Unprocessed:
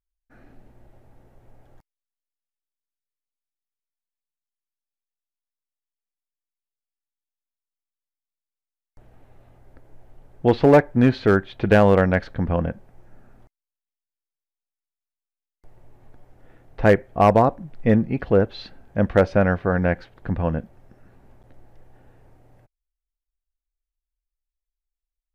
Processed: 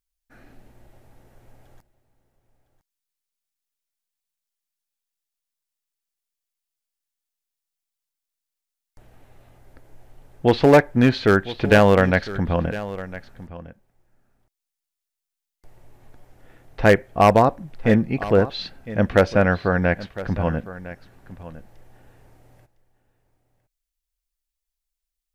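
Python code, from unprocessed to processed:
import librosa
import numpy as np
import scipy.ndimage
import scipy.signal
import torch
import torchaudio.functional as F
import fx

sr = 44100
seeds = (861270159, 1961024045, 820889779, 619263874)

p1 = fx.high_shelf(x, sr, hz=2100.0, db=9.5)
y = p1 + fx.echo_single(p1, sr, ms=1007, db=-16.0, dry=0)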